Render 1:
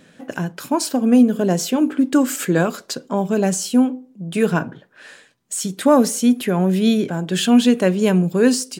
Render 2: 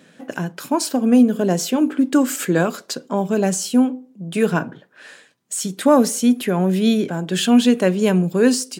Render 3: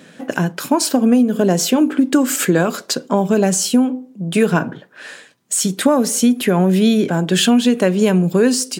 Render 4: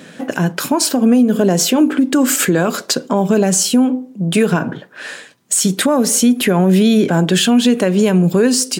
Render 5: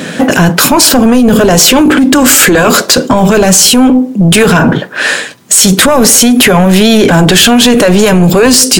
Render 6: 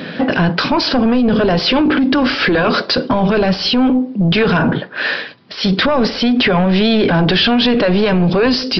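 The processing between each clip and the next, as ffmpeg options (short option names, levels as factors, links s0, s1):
-af "highpass=130"
-af "acompressor=threshold=0.141:ratio=6,volume=2.24"
-af "alimiter=limit=0.316:level=0:latency=1:release=140,volume=1.88"
-af "apsyclip=10.6,volume=0.841"
-af "aresample=11025,aresample=44100,volume=0.422"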